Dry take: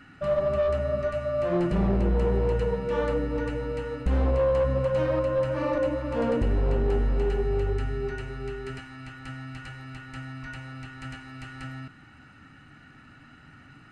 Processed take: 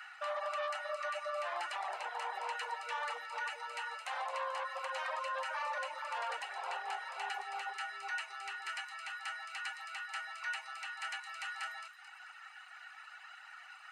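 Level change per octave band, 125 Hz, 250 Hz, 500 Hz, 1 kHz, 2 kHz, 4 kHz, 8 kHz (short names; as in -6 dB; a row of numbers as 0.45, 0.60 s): under -40 dB, under -40 dB, -19.5 dB, -1.0 dB, +1.0 dB, +2.0 dB, n/a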